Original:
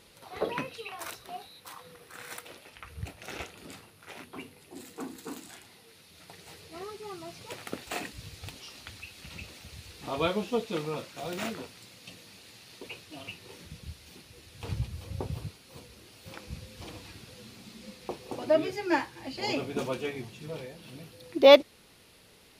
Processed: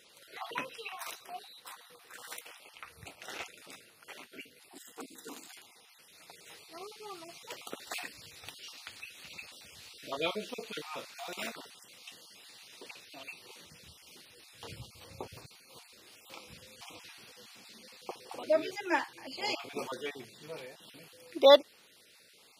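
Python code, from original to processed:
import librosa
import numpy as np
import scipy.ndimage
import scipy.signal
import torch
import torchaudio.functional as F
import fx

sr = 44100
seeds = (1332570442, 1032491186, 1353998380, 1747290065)

y = fx.spec_dropout(x, sr, seeds[0], share_pct=25)
y = fx.highpass(y, sr, hz=680.0, slope=6)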